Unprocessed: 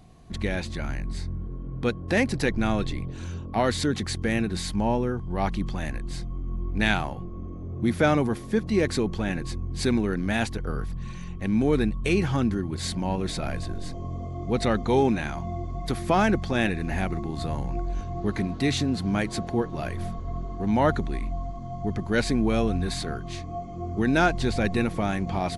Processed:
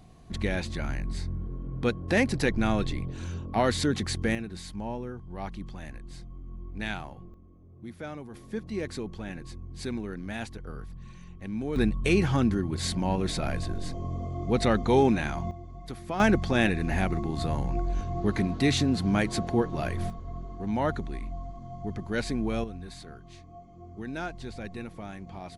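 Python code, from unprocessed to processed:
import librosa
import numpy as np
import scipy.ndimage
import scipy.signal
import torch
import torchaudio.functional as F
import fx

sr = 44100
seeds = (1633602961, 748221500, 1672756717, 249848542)

y = fx.gain(x, sr, db=fx.steps((0.0, -1.0), (4.35, -10.5), (7.34, -18.0), (8.34, -10.0), (11.76, 0.0), (15.51, -11.0), (16.2, 0.5), (20.1, -6.0), (22.64, -14.0)))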